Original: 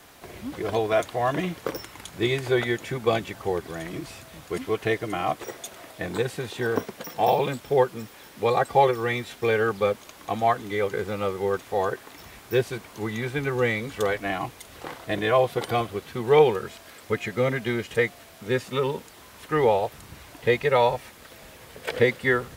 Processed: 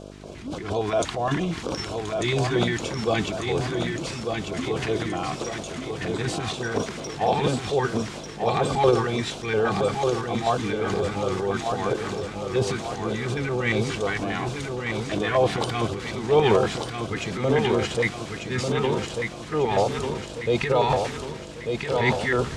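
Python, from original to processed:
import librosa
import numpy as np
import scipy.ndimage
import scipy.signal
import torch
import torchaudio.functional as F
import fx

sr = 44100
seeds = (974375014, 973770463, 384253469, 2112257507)

p1 = scipy.signal.sosfilt(scipy.signal.butter(4, 8000.0, 'lowpass', fs=sr, output='sos'), x)
p2 = fx.transient(p1, sr, attack_db=-4, sustain_db=10)
p3 = fx.dmg_buzz(p2, sr, base_hz=50.0, harmonics=13, level_db=-42.0, tilt_db=0, odd_only=False)
p4 = fx.filter_lfo_notch(p3, sr, shape='square', hz=4.3, low_hz=550.0, high_hz=1900.0, q=0.93)
p5 = p4 + fx.echo_feedback(p4, sr, ms=1194, feedback_pct=50, wet_db=-5.0, dry=0)
y = p5 * 10.0 ** (1.0 / 20.0)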